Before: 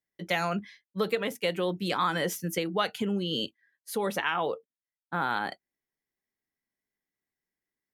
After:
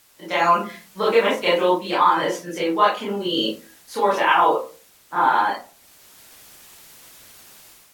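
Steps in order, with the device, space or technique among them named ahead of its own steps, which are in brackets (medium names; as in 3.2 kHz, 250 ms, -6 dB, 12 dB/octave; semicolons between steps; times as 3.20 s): filmed off a television (band-pass 250–7500 Hz; peaking EQ 980 Hz +12 dB 0.54 oct; reverberation RT60 0.35 s, pre-delay 21 ms, DRR -8 dB; white noise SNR 31 dB; level rider gain up to 9 dB; trim -3.5 dB; AAC 64 kbps 44.1 kHz)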